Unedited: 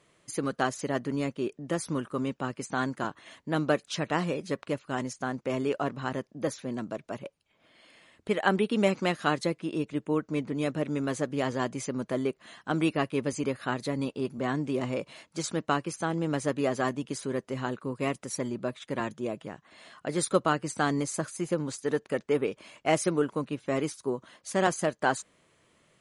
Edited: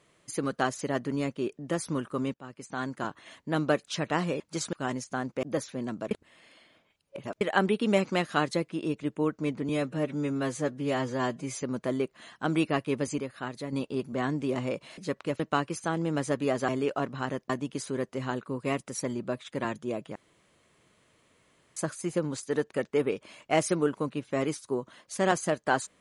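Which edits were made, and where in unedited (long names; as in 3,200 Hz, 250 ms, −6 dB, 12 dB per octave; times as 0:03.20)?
0:02.34–0:03.18: fade in linear, from −16.5 dB
0:04.40–0:04.82: swap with 0:15.23–0:15.56
0:05.52–0:06.33: move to 0:16.85
0:07.01–0:08.31: reverse
0:10.59–0:11.88: time-stretch 1.5×
0:13.45–0:13.98: clip gain −5.5 dB
0:19.51–0:21.12: fill with room tone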